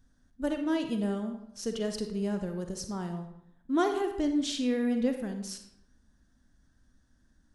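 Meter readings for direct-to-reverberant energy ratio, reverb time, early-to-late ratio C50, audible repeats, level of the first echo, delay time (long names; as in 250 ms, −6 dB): 5.5 dB, 0.80 s, 7.0 dB, no echo audible, no echo audible, no echo audible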